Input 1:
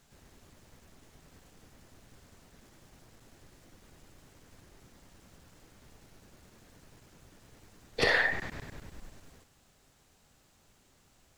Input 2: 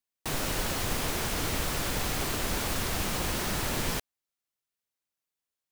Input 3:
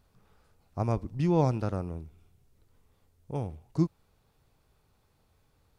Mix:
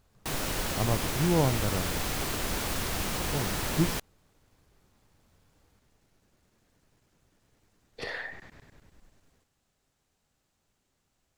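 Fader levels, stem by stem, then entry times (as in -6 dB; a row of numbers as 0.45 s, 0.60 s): -11.0 dB, -1.0 dB, -0.5 dB; 0.00 s, 0.00 s, 0.00 s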